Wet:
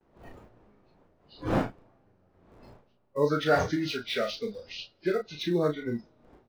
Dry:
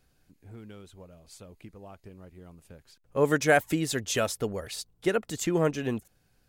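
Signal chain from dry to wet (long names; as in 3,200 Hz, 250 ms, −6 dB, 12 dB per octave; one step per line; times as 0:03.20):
hearing-aid frequency compression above 1,100 Hz 1.5 to 1
wind on the microphone 570 Hz −36 dBFS
noise gate with hold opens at −40 dBFS
comb and all-pass reverb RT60 3.4 s, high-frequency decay 0.9×, pre-delay 30 ms, DRR 16 dB
in parallel at −11 dB: comparator with hysteresis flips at −29 dBFS
on the sum: noise reduction from a noise print of the clip's start 18 dB
double-tracking delay 34 ms −6 dB
level −3 dB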